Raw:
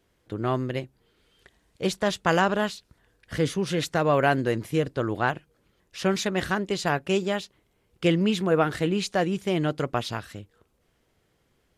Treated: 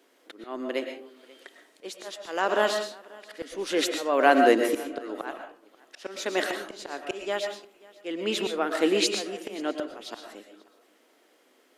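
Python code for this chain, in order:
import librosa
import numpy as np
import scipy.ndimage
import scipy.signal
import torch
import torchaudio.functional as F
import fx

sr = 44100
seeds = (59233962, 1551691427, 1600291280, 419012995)

p1 = scipy.signal.sosfilt(scipy.signal.ellip(4, 1.0, 60, 260.0, 'highpass', fs=sr, output='sos'), x)
p2 = fx.auto_swell(p1, sr, attack_ms=607.0)
p3 = p2 + fx.echo_single(p2, sr, ms=537, db=-23.5, dry=0)
p4 = fx.rev_freeverb(p3, sr, rt60_s=0.42, hf_ratio=0.5, predelay_ms=80, drr_db=5.0)
y = p4 * 10.0 ** (8.0 / 20.0)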